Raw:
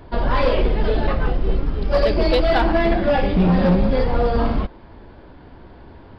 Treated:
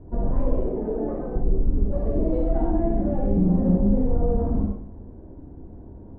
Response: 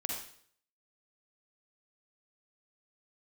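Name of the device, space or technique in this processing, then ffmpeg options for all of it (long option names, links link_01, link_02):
television next door: -filter_complex "[0:a]asettb=1/sr,asplit=3[link_01][link_02][link_03];[link_01]atrim=end=0.584[link_04];[link_02]atrim=start=0.58:end=1.36,asetpts=PTS-STARTPTS,afade=type=in:duration=0.004:curve=qsin,afade=type=out:start_time=0.776:duration=0.004:curve=qsin,acrossover=split=220 2600:gain=0.141 1 0.0891[link_05][link_06][link_07];[link_05][link_06][link_07]amix=inputs=3:normalize=0[link_08];[link_03]atrim=start=1.356[link_09];[link_04][link_08]acrossfade=duration=0.004:curve1=hsin:curve2=qsin[link_10];[link_10][link_09]acrossfade=duration=0.004:curve1=qsin:curve2=hsin,acompressor=threshold=-18dB:ratio=6,lowpass=390[link_11];[1:a]atrim=start_sample=2205[link_12];[link_11][link_12]afir=irnorm=-1:irlink=0"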